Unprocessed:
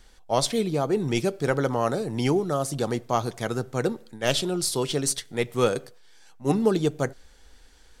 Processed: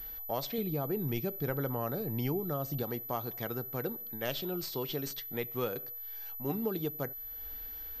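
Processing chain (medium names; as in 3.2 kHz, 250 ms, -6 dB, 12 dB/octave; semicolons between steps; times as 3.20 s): 0.58–2.83 s: bass shelf 170 Hz +9.5 dB; compression 2:1, threshold -45 dBFS, peak gain reduction 16 dB; class-D stage that switches slowly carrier 12 kHz; trim +2 dB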